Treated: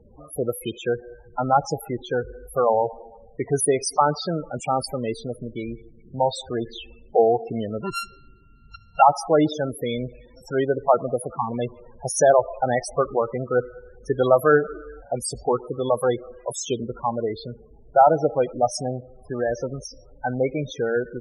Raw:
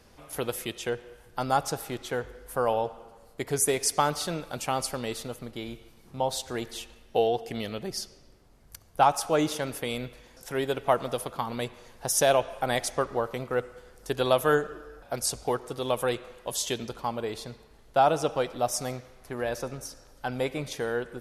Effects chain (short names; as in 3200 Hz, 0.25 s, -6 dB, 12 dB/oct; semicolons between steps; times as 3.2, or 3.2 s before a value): 7.83–9.02 sample sorter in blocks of 32 samples; loudest bins only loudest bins 16; gain +7 dB